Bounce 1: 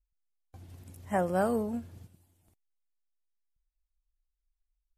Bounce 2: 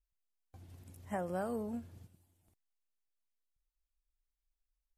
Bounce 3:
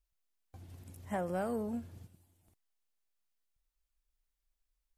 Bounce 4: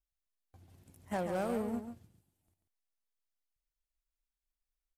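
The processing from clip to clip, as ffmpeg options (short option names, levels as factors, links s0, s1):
-af "acompressor=threshold=0.0355:ratio=4,volume=0.562"
-af "asoftclip=type=tanh:threshold=0.0376,volume=1.41"
-af "aeval=exprs='0.0447*(cos(1*acos(clip(val(0)/0.0447,-1,1)))-cos(1*PI/2))+0.00398*(cos(7*acos(clip(val(0)/0.0447,-1,1)))-cos(7*PI/2))':c=same,aecho=1:1:139:0.398"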